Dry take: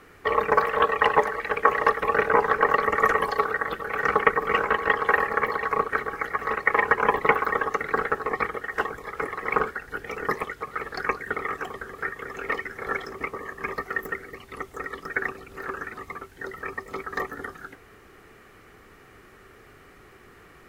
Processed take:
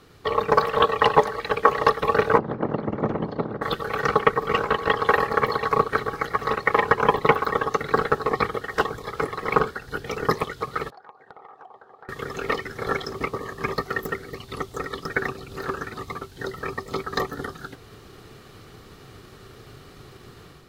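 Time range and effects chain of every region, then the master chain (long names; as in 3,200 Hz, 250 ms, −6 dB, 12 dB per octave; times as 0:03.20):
0:02.37–0:03.61: ceiling on every frequency bin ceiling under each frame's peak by 15 dB + resonant band-pass 240 Hz, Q 1 + high-frequency loss of the air 74 metres
0:10.90–0:12.09: resonant band-pass 800 Hz, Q 5.1 + downward compressor 16 to 1, threshold −44 dBFS
whole clip: octave-band graphic EQ 125/2,000/4,000 Hz +9/−9/+11 dB; automatic gain control gain up to 6 dB; transient designer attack +2 dB, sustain −2 dB; level −1.5 dB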